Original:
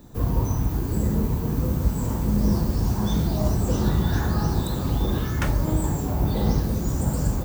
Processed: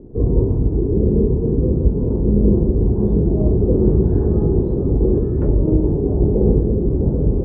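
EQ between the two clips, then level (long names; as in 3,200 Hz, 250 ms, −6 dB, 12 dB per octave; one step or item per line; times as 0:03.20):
low-pass with resonance 410 Hz, resonance Q 4.9
low-shelf EQ 62 Hz +6.5 dB
+3.0 dB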